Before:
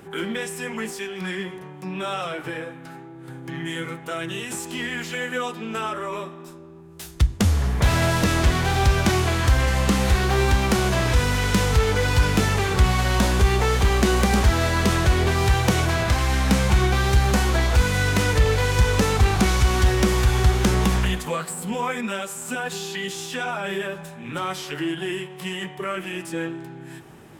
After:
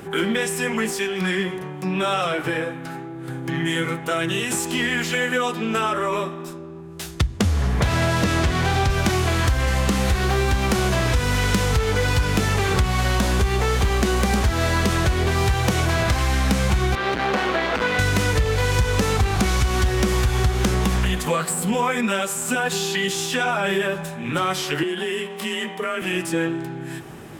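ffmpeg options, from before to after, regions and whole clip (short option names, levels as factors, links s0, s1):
-filter_complex "[0:a]asettb=1/sr,asplit=3[s0][s1][s2];[s0]atrim=end=6.534[s3];[s1]atrim=start=6.53:end=8.9,asetpts=PTS-STARTPTS,afade=t=in:d=0.004:c=qsin,afade=t=out:st=2.366:d=0.004:c=qsin,highpass=59,highshelf=f=9400:g=-8[s4];[s2]atrim=start=8.896[s5];[s3][s4]acrossfade=d=0.004:c1=hsin:c2=qsin[s6];[s6][s5]acrossfade=d=0.004:c1=qsin:c2=hsin,asettb=1/sr,asplit=3[s7][s8][s9];[s7]atrim=end=16.954[s10];[s8]atrim=start=16.95:end=17.99,asetpts=PTS-STARTPTS,afade=t=in:d=0.004:c=qsin,afade=t=out:st=1.036:d=0.004:c=qsin,asoftclip=type=hard:threshold=0.141,acrossover=split=220 3900:gain=0.0631 1 0.1[s11][s12][s13];[s11][s12][s13]amix=inputs=3:normalize=0[s14];[s9]atrim=start=17.986[s15];[s10][s14]acrossfade=d=0.004:c1=hsin:c2=qsin[s16];[s16][s15]acrossfade=d=0.004:c1=qsin:c2=hsin,asettb=1/sr,asplit=3[s17][s18][s19];[s17]atrim=end=24.834[s20];[s18]atrim=start=24.83:end=26.02,asetpts=PTS-STARTPTS,afade=t=in:d=0.004:c=qsin,afade=t=out:st=1.186:d=0.004:c=qsin,lowshelf=f=160:g=-7,acompressor=threshold=0.0316:ratio=2.5:attack=3.2:release=140:knee=1:detection=peak,afreqshift=31[s21];[s19]atrim=start=26.016[s22];[s20][s21]acrossfade=d=0.004:c1=hsin:c2=qsin[s23];[s23][s22]acrossfade=d=0.004:c1=qsin:c2=hsin,acompressor=threshold=0.0631:ratio=5,bandreject=f=910:w=24,acontrast=86"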